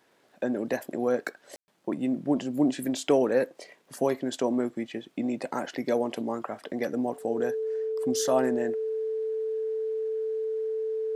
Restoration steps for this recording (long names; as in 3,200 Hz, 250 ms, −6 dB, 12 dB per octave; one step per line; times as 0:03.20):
click removal
notch filter 440 Hz, Q 30
ambience match 0:01.56–0:01.68